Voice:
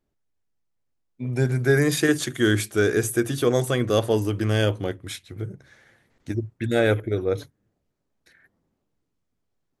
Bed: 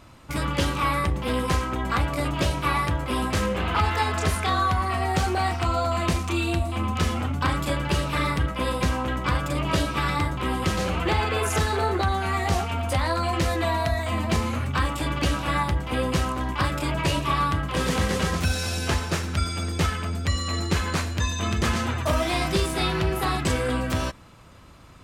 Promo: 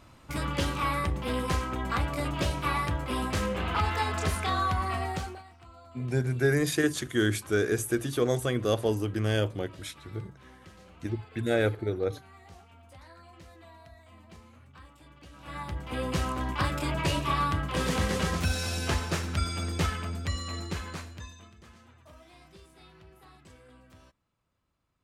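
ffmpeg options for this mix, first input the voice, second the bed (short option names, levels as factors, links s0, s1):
-filter_complex "[0:a]adelay=4750,volume=0.531[s0];[1:a]volume=8.41,afade=t=out:st=4.94:d=0.49:silence=0.0749894,afade=t=in:st=15.32:d=1.01:silence=0.0668344,afade=t=out:st=19.74:d=1.77:silence=0.0501187[s1];[s0][s1]amix=inputs=2:normalize=0"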